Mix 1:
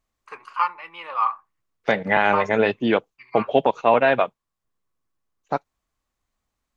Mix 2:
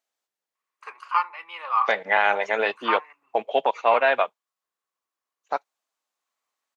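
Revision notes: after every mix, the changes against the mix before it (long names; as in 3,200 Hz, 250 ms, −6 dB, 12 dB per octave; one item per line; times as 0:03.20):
first voice: entry +0.55 s
master: add high-pass filter 610 Hz 12 dB per octave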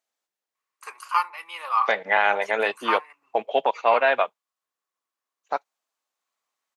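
first voice: remove low-pass filter 3,200 Hz 12 dB per octave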